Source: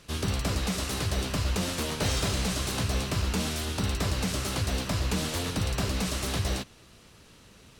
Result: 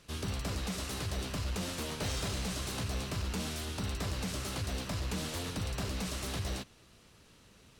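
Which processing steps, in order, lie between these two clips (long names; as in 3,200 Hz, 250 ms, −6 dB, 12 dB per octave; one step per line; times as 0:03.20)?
soft clipping −21 dBFS, distortion −21 dB
level −6 dB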